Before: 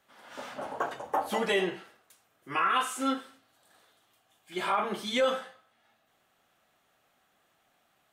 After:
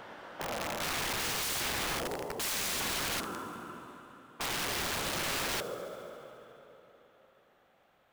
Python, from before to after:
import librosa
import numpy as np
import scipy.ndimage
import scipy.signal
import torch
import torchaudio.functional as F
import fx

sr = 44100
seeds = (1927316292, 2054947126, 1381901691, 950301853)

p1 = fx.spec_steps(x, sr, hold_ms=400)
p2 = fx.rider(p1, sr, range_db=4, speed_s=2.0)
p3 = p1 + (p2 * librosa.db_to_amplitude(-2.5))
p4 = fx.peak_eq(p3, sr, hz=9600.0, db=-13.0, octaves=2.0)
p5 = fx.whisperise(p4, sr, seeds[0])
p6 = fx.graphic_eq(p5, sr, hz=(125, 500, 1000, 2000, 4000), db=(6, 9, 10, -8, -9), at=(1.41, 2.52), fade=0.02)
p7 = fx.rev_plate(p6, sr, seeds[1], rt60_s=3.6, hf_ratio=1.0, predelay_ms=0, drr_db=8.0)
p8 = (np.mod(10.0 ** (29.0 / 20.0) * p7 + 1.0, 2.0) - 1.0) / 10.0 ** (29.0 / 20.0)
y = p8 + fx.echo_wet_highpass(p8, sr, ms=70, feedback_pct=79, hz=5300.0, wet_db=-17, dry=0)